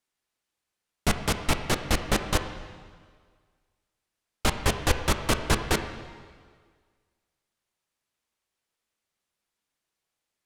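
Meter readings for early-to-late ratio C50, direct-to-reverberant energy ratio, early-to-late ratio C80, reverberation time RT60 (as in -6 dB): 8.5 dB, 7.0 dB, 10.0 dB, 1.8 s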